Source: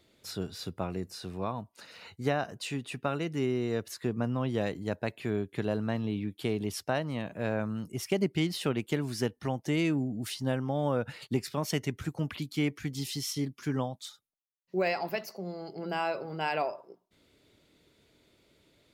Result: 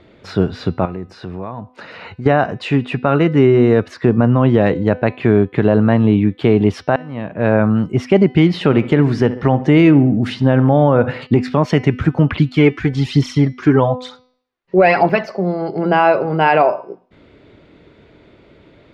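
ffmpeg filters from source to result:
-filter_complex "[0:a]asettb=1/sr,asplit=3[a][b][c];[a]atrim=end=0.854[d];[b]atrim=start=0.85:end=2.26,asetpts=PTS-STARTPTS,afade=t=in:d=0.004:c=qsin,afade=t=out:st=1.406:d=0.004:c=qsin,acompressor=threshold=-46dB:ratio=3:attack=3.2:release=140:knee=1:detection=peak[e];[c]atrim=start=2.256[f];[d][e]acrossfade=d=0.004:c1=hsin:c2=qsin[g];[g][f]acrossfade=d=0.004:c1=qsin:c2=hsin,asettb=1/sr,asplit=3[h][i][j];[h]atrim=end=8.474[k];[i]atrim=start=8.47:end=11.21,asetpts=PTS-STARTPTS,afade=t=in:d=0.004:c=qsin,afade=t=out:st=2.736:d=0.004:c=qsin,asplit=2[l][m];[m]adelay=69,lowpass=f=2.9k:p=1,volume=-17.5dB,asplit=2[n][o];[o]adelay=69,lowpass=f=2.9k:p=1,volume=0.51,asplit=2[p][q];[q]adelay=69,lowpass=f=2.9k:p=1,volume=0.51,asplit=2[r][s];[s]adelay=69,lowpass=f=2.9k:p=1,volume=0.51[t];[l][n][p][r][t]amix=inputs=5:normalize=0,atrim=end_sample=120834[u];[j]atrim=start=11.206[v];[k][u]acrossfade=d=0.004:c1=hsin:c2=qsin[w];[w][v]acrossfade=d=0.004:c1=qsin:c2=hsin,asettb=1/sr,asplit=3[x][y][z];[x]atrim=end=12.324[aa];[y]atrim=start=12.32:end=15.35,asetpts=PTS-STARTPTS,afade=t=in:d=0.004:c=qsin,afade=t=out:st=3.026:d=0.004:c=qsin,aphaser=in_gain=1:out_gain=1:delay=3:decay=0.5:speed=1.1:type=triangular[ab];[z]atrim=start=15.346[ac];[aa][ab]acrossfade=d=0.004:c1=hsin:c2=qsin[ad];[ad][ac]acrossfade=d=0.004:c1=qsin:c2=hsin,asplit=2[ae][af];[ae]atrim=end=6.96,asetpts=PTS-STARTPTS,afade=t=out:st=6.956:d=0.004:c=hsin[ag];[af]atrim=start=6.96,asetpts=PTS-STARTPTS,afade=t=in:d=0.73[ah];[ag][ah]concat=n=2:v=0:a=1,lowpass=2k,bandreject=f=252.2:t=h:w=4,bandreject=f=504.4:t=h:w=4,bandreject=f=756.6:t=h:w=4,bandreject=f=1.0088k:t=h:w=4,bandreject=f=1.261k:t=h:w=4,bandreject=f=1.5132k:t=h:w=4,bandreject=f=1.7654k:t=h:w=4,bandreject=f=2.0176k:t=h:w=4,bandreject=f=2.2698k:t=h:w=4,bandreject=f=2.522k:t=h:w=4,bandreject=f=2.7742k:t=h:w=4,bandreject=f=3.0264k:t=h:w=4,bandreject=f=3.2786k:t=h:w=4,bandreject=f=3.5308k:t=h:w=4,bandreject=f=3.783k:t=h:w=4,bandreject=f=4.0352k:t=h:w=4,bandreject=f=4.2874k:t=h:w=4,bandreject=f=4.5396k:t=h:w=4,bandreject=f=4.7918k:t=h:w=4,bandreject=f=5.044k:t=h:w=4,bandreject=f=5.2962k:t=h:w=4,bandreject=f=5.5484k:t=h:w=4,bandreject=f=5.8006k:t=h:w=4,alimiter=level_in=21dB:limit=-1dB:release=50:level=0:latency=1,volume=-1dB"

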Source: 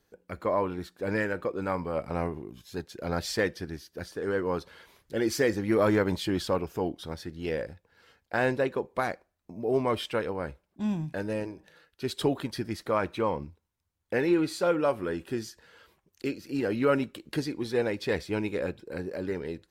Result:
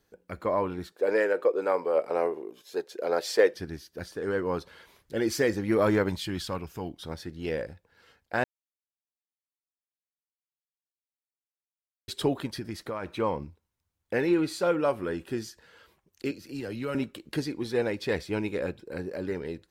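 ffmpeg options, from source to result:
-filter_complex "[0:a]asettb=1/sr,asplit=3[a][b][c];[a]atrim=end=0.924[d];[b]atrim=start=0.92:end=3.54,asetpts=PTS-STARTPTS,afade=t=in:d=0.004:c=qsin,afade=t=out:st=2.616:d=0.004:c=qsin,highpass=f=450:t=q:w=2.7[e];[c]atrim=start=3.536[f];[d][e]acrossfade=d=0.004:c1=hsin:c2=qsin[g];[g][f]acrossfade=d=0.004:c1=qsin:c2=hsin,asettb=1/sr,asplit=3[h][i][j];[h]atrim=end=6.094[k];[i]atrim=start=6.09:end=7.02,asetpts=PTS-STARTPTS,afade=t=in:d=0.004:c=qsin,afade=t=out:st=0.926:d=0.004:c=qsin,equalizer=f=480:w=0.66:g=-8.5[l];[j]atrim=start=7.016[m];[k][l]acrossfade=d=0.004:c1=hsin:c2=qsin[n];[n][m]acrossfade=d=0.004:c1=qsin:c2=hsin,asettb=1/sr,asplit=3[o][p][q];[o]atrim=end=12.584[r];[p]atrim=start=12.58:end=13.16,asetpts=PTS-STARTPTS,afade=t=in:d=0.004:c=qsin,afade=t=out:st=0.576:d=0.004:c=qsin,acompressor=threshold=-30dB:ratio=5:attack=3.2:release=140:knee=1:detection=peak[s];[q]atrim=start=13.156[t];[r][s]acrossfade=d=0.004:c1=hsin:c2=qsin[u];[u][t]acrossfade=d=0.004:c1=qsin:c2=hsin,asettb=1/sr,asplit=3[v][w][x];[v]atrim=end=16.314[y];[w]atrim=start=16.31:end=16.95,asetpts=PTS-STARTPTS,afade=t=in:d=0.004:c=qsin,afade=t=out:st=0.636:d=0.004:c=qsin,acrossover=split=130|3000[z][aa][ab];[aa]acompressor=threshold=-47dB:ratio=1.5:attack=3.2:release=140:knee=2.83:detection=peak[ac];[z][ac][ab]amix=inputs=3:normalize=0[ad];[x]atrim=start=16.946[ae];[y][ad]acrossfade=d=0.004:c1=hsin:c2=qsin[af];[af][ae]acrossfade=d=0.004:c1=qsin:c2=hsin,asplit=3[ag][ah][ai];[ag]atrim=end=8.44,asetpts=PTS-STARTPTS,afade=t=out:st=8.436:d=0.004:c=hsin[aj];[ah]atrim=start=8.44:end=12.08,asetpts=PTS-STARTPTS,volume=0[ak];[ai]atrim=start=12.08,asetpts=PTS-STARTPTS,afade=t=in:d=0.004:c=hsin[al];[aj][ak][al]concat=n=3:v=0:a=1"

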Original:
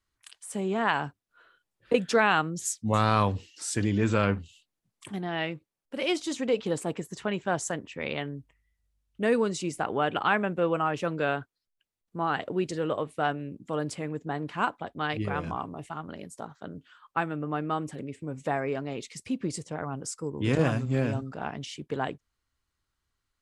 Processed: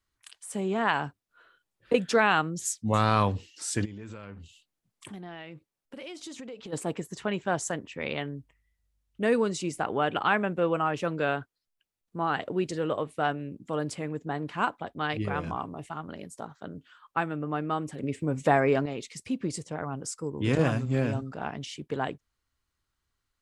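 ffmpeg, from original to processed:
-filter_complex "[0:a]asplit=3[a][b][c];[a]afade=t=out:st=3.84:d=0.02[d];[b]acompressor=threshold=-38dB:ratio=10:attack=3.2:release=140:knee=1:detection=peak,afade=t=in:st=3.84:d=0.02,afade=t=out:st=6.72:d=0.02[e];[c]afade=t=in:st=6.72:d=0.02[f];[d][e][f]amix=inputs=3:normalize=0,asettb=1/sr,asplit=3[g][h][i];[g]atrim=end=18.034[j];[h]atrim=start=18.03:end=18.86,asetpts=PTS-STARTPTS,afade=t=in:d=0.004:c=qsin,afade=t=out:st=0.826:d=0.004:c=qsin,acontrast=81[k];[i]atrim=start=18.856[l];[j][k]acrossfade=d=0.004:c1=hsin:c2=qsin[m];[m][l]acrossfade=d=0.004:c1=qsin:c2=hsin"

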